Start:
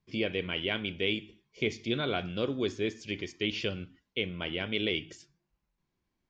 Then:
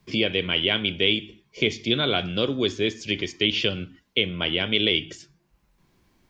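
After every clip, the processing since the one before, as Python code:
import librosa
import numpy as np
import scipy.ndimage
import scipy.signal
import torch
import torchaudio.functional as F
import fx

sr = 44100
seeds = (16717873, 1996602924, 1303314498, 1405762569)

y = fx.dynamic_eq(x, sr, hz=3300.0, q=2.8, threshold_db=-47.0, ratio=4.0, max_db=7)
y = fx.band_squash(y, sr, depth_pct=40)
y = F.gain(torch.from_numpy(y), 6.5).numpy()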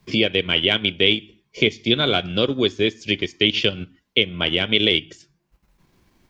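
y = fx.transient(x, sr, attack_db=1, sustain_db=-8)
y = F.gain(torch.from_numpy(y), 4.0).numpy()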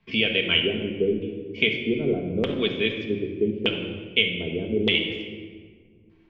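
y = fx.filter_lfo_lowpass(x, sr, shape='square', hz=0.82, low_hz=390.0, high_hz=2700.0, q=2.4)
y = fx.room_shoebox(y, sr, seeds[0], volume_m3=2000.0, walls='mixed', distance_m=1.6)
y = F.gain(torch.from_numpy(y), -8.5).numpy()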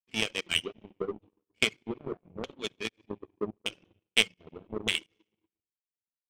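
y = fx.volume_shaper(x, sr, bpm=83, per_beat=1, depth_db=-9, release_ms=114.0, shape='fast start')
y = fx.dereverb_blind(y, sr, rt60_s=1.8)
y = fx.power_curve(y, sr, exponent=2.0)
y = F.gain(torch.from_numpy(y), 3.0).numpy()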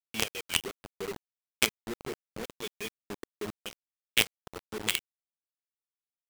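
y = fx.quant_companded(x, sr, bits=2)
y = F.gain(torch.from_numpy(y), -6.5).numpy()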